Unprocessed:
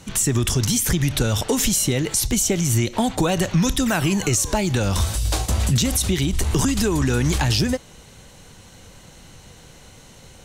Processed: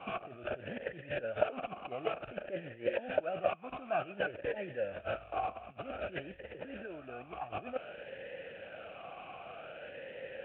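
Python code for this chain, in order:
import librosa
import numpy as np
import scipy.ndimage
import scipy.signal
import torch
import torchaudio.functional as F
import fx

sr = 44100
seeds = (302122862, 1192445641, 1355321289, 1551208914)

y = fx.cvsd(x, sr, bps=16000)
y = fx.over_compress(y, sr, threshold_db=-27.0, ratio=-0.5)
y = fx.vowel_sweep(y, sr, vowels='a-e', hz=0.54)
y = F.gain(torch.from_numpy(y), 6.5).numpy()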